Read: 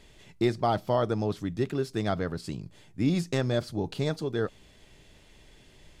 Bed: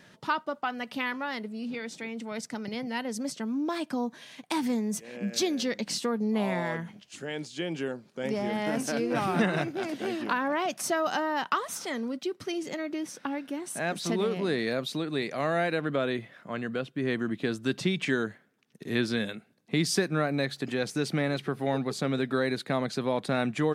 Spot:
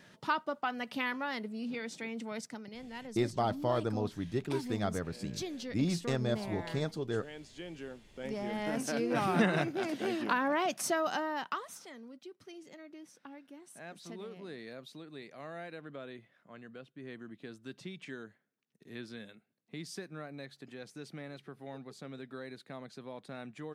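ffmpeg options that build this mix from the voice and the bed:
-filter_complex "[0:a]adelay=2750,volume=-5.5dB[a];[1:a]volume=7dB,afade=t=out:st=2.26:d=0.42:silence=0.354813,afade=t=in:st=7.9:d=1.47:silence=0.316228,afade=t=out:st=10.73:d=1.2:silence=0.177828[b];[a][b]amix=inputs=2:normalize=0"

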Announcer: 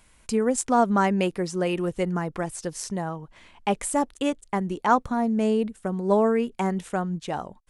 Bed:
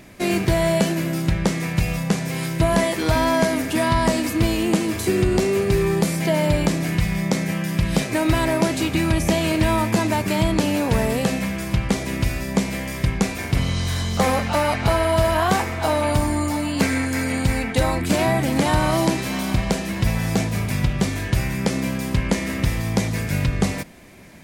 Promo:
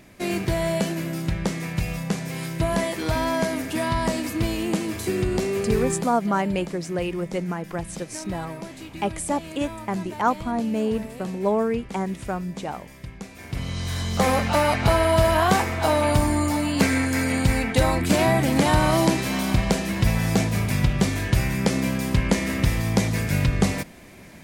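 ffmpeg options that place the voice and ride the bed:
-filter_complex "[0:a]adelay=5350,volume=-1.5dB[a];[1:a]volume=12dB,afade=t=out:st=5.88:d=0.25:silence=0.251189,afade=t=in:st=13.3:d=1.13:silence=0.141254[b];[a][b]amix=inputs=2:normalize=0"

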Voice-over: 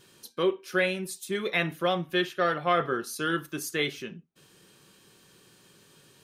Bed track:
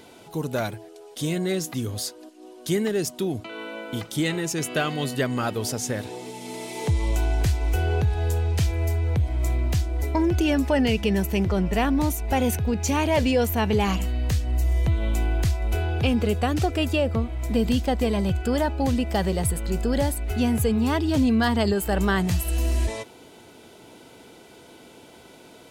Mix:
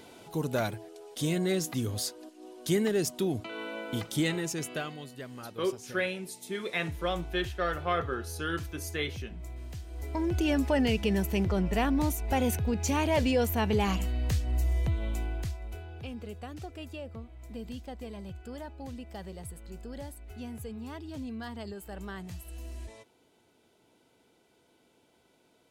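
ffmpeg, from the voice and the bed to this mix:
-filter_complex "[0:a]adelay=5200,volume=-5dB[a];[1:a]volume=10dB,afade=t=out:st=4.15:d=0.91:silence=0.177828,afade=t=in:st=9.84:d=0.68:silence=0.223872,afade=t=out:st=14.58:d=1.25:silence=0.211349[b];[a][b]amix=inputs=2:normalize=0"

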